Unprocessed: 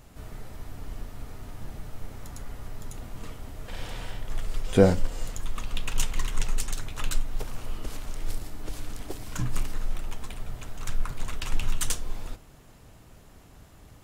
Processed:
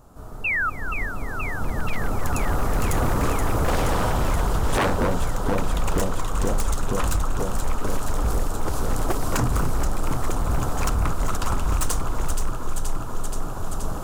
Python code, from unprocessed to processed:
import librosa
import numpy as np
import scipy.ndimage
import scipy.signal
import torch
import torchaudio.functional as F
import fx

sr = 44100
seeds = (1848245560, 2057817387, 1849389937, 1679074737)

p1 = fx.recorder_agc(x, sr, target_db=-8.0, rise_db_per_s=6.8, max_gain_db=30)
p2 = fx.curve_eq(p1, sr, hz=(130.0, 1300.0, 2000.0, 7200.0), db=(0, 6, -13, -2))
p3 = fx.spec_paint(p2, sr, seeds[0], shape='fall', start_s=0.44, length_s=0.26, low_hz=1200.0, high_hz=2800.0, level_db=-23.0)
p4 = p3 + fx.echo_alternate(p3, sr, ms=238, hz=1500.0, feedback_pct=89, wet_db=-6, dry=0)
y = 10.0 ** (-15.0 / 20.0) * (np.abs((p4 / 10.0 ** (-15.0 / 20.0) + 3.0) % 4.0 - 2.0) - 1.0)